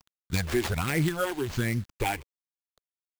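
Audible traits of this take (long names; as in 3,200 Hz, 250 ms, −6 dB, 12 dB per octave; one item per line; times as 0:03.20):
a quantiser's noise floor 8 bits, dither none
phaser sweep stages 8, 1.3 Hz, lowest notch 160–1,100 Hz
aliases and images of a low sample rate 11,000 Hz, jitter 20%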